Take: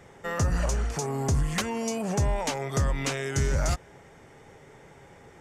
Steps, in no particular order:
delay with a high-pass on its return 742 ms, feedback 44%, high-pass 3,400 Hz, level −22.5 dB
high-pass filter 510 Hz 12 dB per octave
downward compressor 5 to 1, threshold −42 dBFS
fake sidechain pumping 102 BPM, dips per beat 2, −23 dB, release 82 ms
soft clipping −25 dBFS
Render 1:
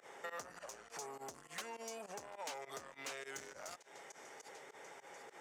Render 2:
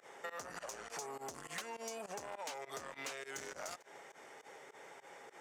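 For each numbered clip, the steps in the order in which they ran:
delay with a high-pass on its return, then fake sidechain pumping, then soft clipping, then downward compressor, then high-pass filter
soft clipping, then high-pass filter, then downward compressor, then delay with a high-pass on its return, then fake sidechain pumping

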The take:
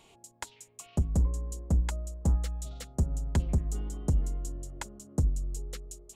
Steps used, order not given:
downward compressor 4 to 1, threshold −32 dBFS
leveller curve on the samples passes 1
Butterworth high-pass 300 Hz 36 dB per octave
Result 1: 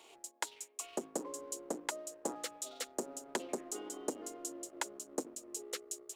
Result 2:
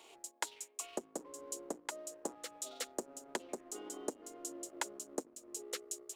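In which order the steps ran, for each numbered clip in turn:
Butterworth high-pass, then downward compressor, then leveller curve on the samples
downward compressor, then Butterworth high-pass, then leveller curve on the samples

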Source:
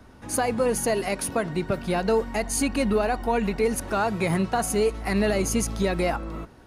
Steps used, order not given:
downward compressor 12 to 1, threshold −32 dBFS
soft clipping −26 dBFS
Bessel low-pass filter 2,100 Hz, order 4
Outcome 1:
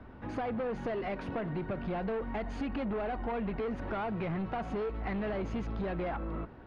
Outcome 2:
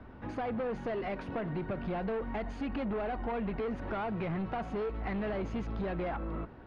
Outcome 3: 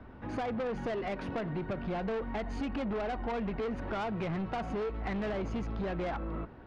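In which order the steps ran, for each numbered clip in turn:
soft clipping, then Bessel low-pass filter, then downward compressor
soft clipping, then downward compressor, then Bessel low-pass filter
Bessel low-pass filter, then soft clipping, then downward compressor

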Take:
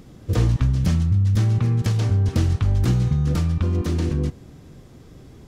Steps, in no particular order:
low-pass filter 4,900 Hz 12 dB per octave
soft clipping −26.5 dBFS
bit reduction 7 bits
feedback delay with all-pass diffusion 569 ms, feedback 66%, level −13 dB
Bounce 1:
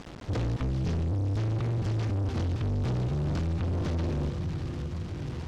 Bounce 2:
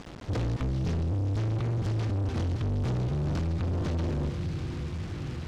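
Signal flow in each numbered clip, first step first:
bit reduction, then feedback delay with all-pass diffusion, then soft clipping, then low-pass filter
feedback delay with all-pass diffusion, then bit reduction, then low-pass filter, then soft clipping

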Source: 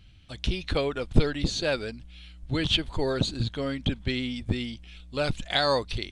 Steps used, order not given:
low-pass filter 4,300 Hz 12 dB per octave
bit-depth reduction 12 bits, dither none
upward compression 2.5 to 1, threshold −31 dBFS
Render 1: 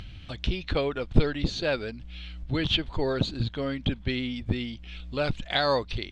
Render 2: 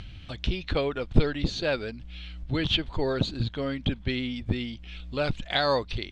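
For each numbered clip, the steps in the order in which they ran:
bit-depth reduction, then low-pass filter, then upward compression
bit-depth reduction, then upward compression, then low-pass filter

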